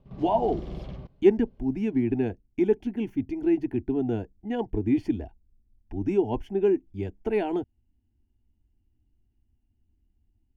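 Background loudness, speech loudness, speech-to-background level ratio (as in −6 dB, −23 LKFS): −40.0 LKFS, −27.0 LKFS, 13.0 dB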